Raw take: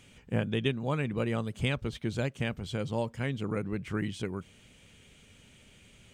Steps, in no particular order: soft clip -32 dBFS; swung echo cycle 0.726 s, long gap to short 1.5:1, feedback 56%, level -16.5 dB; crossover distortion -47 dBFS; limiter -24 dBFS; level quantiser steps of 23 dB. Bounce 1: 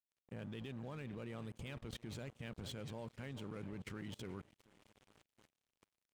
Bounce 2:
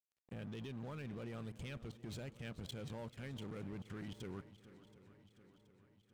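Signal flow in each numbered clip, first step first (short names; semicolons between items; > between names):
limiter > swung echo > crossover distortion > level quantiser > soft clip; crossover distortion > limiter > soft clip > level quantiser > swung echo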